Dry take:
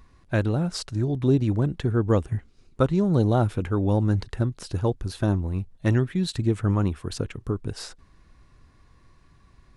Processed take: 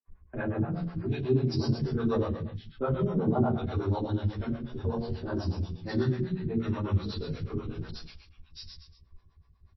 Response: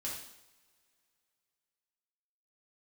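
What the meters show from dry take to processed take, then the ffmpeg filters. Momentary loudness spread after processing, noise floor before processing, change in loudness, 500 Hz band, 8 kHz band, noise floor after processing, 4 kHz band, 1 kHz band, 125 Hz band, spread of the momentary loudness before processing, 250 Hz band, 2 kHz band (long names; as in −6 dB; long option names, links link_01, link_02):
14 LU, −57 dBFS, −6.0 dB, −4.5 dB, below −15 dB, −61 dBFS, −5.5 dB, −4.5 dB, −6.5 dB, 9 LU, −5.5 dB, −6.0 dB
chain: -filter_complex "[0:a]lowshelf=frequency=230:gain=11.5,asplit=2[link_01][link_02];[link_02]adelay=13,volume=-2.5dB[link_03];[link_01][link_03]amix=inputs=2:normalize=0,acrossover=split=220|2300[link_04][link_05][link_06];[link_04]adelay=40[link_07];[link_06]adelay=770[link_08];[link_07][link_05][link_08]amix=inputs=3:normalize=0,acrossover=split=150|630|3900[link_09][link_10][link_11][link_12];[link_09]acompressor=threshold=-30dB:ratio=10[link_13];[link_13][link_10][link_11][link_12]amix=inputs=4:normalize=0,agate=range=-33dB:threshold=-34dB:ratio=3:detection=peak[link_14];[1:a]atrim=start_sample=2205,afade=type=out:start_time=0.32:duration=0.01,atrim=end_sample=14553,asetrate=32193,aresample=44100[link_15];[link_14][link_15]afir=irnorm=-1:irlink=0,acrossover=split=430[link_16][link_17];[link_16]aeval=exprs='val(0)*(1-1/2+1/2*cos(2*PI*8.2*n/s))':channel_layout=same[link_18];[link_17]aeval=exprs='val(0)*(1-1/2-1/2*cos(2*PI*8.2*n/s))':channel_layout=same[link_19];[link_18][link_19]amix=inputs=2:normalize=0,bandreject=frequency=60:width_type=h:width=6,bandreject=frequency=120:width_type=h:width=6,bandreject=frequency=180:width_type=h:width=6,bandreject=frequency=240:width_type=h:width=6,bandreject=frequency=300:width_type=h:width=6,volume=-5dB" -ar 16000 -c:a libmp3lame -b:a 24k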